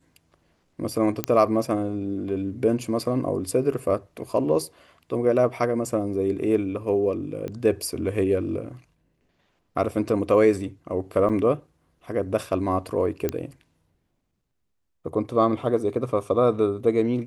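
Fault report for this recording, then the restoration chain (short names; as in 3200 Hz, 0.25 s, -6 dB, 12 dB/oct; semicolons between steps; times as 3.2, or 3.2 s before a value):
1.24 pop -7 dBFS
7.48 pop -21 dBFS
11.29–11.3 gap 6.6 ms
13.29 pop -11 dBFS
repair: de-click; interpolate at 11.29, 6.6 ms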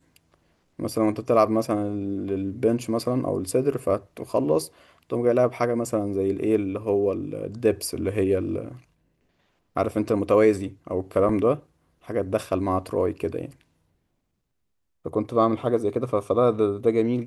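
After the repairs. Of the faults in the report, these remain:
7.48 pop
13.29 pop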